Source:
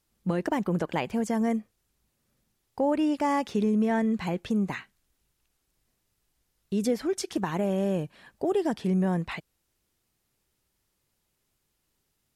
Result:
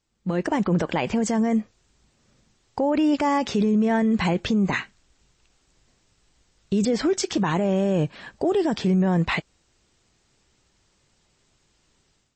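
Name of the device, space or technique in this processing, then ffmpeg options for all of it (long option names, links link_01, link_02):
low-bitrate web radio: -af "dynaudnorm=framelen=320:gausssize=3:maxgain=12.5dB,alimiter=limit=-14dB:level=0:latency=1:release=32" -ar 22050 -c:a libmp3lame -b:a 32k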